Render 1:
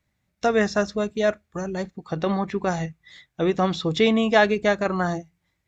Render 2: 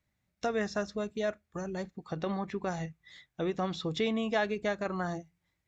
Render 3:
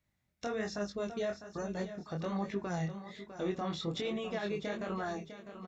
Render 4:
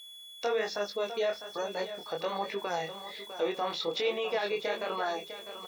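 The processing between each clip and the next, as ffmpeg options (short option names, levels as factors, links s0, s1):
-af "acompressor=threshold=0.0316:ratio=1.5,volume=0.501"
-af "alimiter=level_in=1.41:limit=0.0631:level=0:latency=1:release=17,volume=0.708,aecho=1:1:652|1304|1956|2608:0.282|0.104|0.0386|0.0143,flanger=delay=19.5:depth=6:speed=1.2,volume=1.26"
-af "highpass=470,equalizer=f=480:t=q:w=4:g=8,equalizer=f=890:t=q:w=4:g=6,equalizer=f=2500:t=q:w=4:g=6,equalizer=f=4500:t=q:w=4:g=5,lowpass=f=6100:w=0.5412,lowpass=f=6100:w=1.3066,aeval=exprs='val(0)+0.00316*sin(2*PI*3400*n/s)':c=same,aeval=exprs='val(0)*gte(abs(val(0)),0.00178)':c=same,volume=1.68"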